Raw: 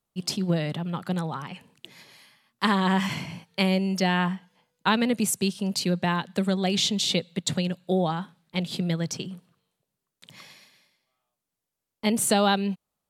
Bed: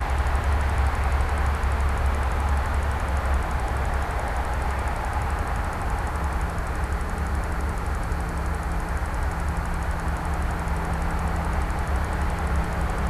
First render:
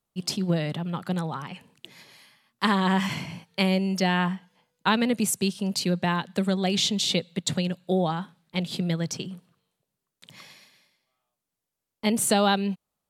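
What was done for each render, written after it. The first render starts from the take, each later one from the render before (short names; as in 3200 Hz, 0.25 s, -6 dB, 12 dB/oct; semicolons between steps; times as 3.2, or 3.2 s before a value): nothing audible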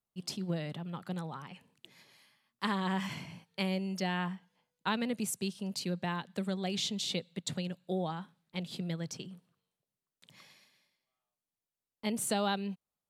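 gain -10 dB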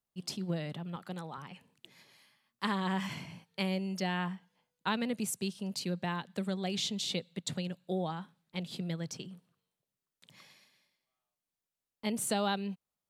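0.96–1.38 HPF 230 Hz 6 dB/oct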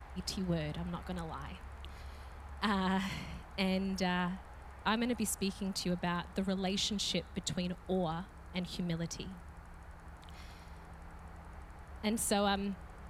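add bed -25 dB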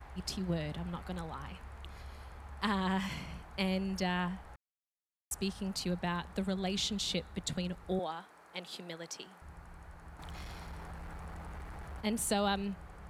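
4.56–5.31 mute; 7.99–9.42 HPF 390 Hz; 10.19–12.01 sample leveller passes 2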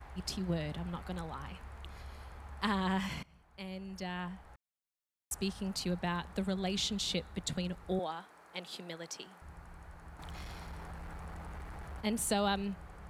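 3.23–5.35 fade in, from -20.5 dB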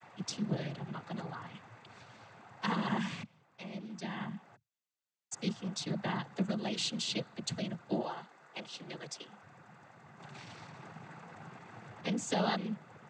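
noise vocoder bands 16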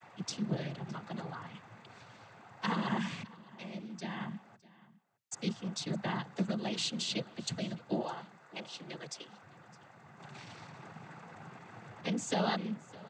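echo 0.611 s -21 dB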